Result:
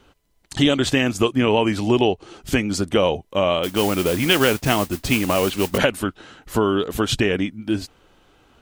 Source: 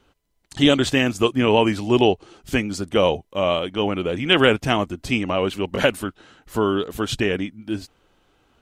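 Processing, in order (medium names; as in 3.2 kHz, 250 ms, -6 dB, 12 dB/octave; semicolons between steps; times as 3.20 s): compression 2.5:1, threshold -23 dBFS, peak gain reduction 9 dB; 3.63–5.78 s: modulation noise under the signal 12 dB; trim +6 dB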